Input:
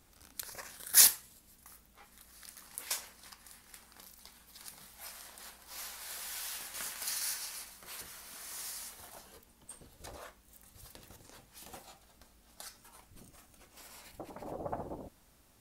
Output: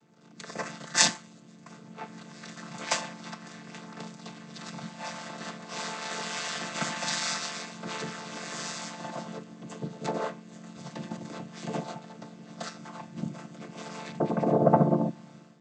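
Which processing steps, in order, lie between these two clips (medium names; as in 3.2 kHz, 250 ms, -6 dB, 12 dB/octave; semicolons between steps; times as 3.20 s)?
vocoder on a held chord minor triad, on D3; level rider gain up to 15 dB; trim -2 dB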